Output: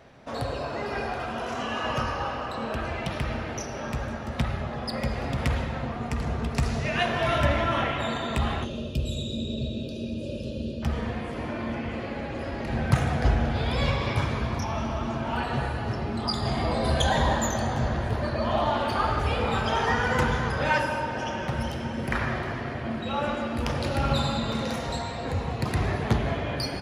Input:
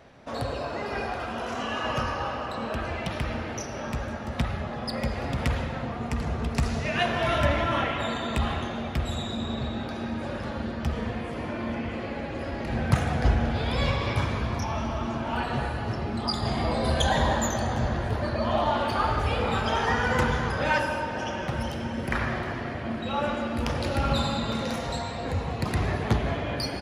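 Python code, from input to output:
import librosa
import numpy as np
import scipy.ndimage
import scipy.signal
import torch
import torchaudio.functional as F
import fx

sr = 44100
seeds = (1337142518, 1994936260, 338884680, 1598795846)

y = fx.spec_box(x, sr, start_s=8.64, length_s=2.19, low_hz=660.0, high_hz=2400.0, gain_db=-27)
y = fx.rev_fdn(y, sr, rt60_s=1.6, lf_ratio=1.0, hf_ratio=0.45, size_ms=44.0, drr_db=13.5)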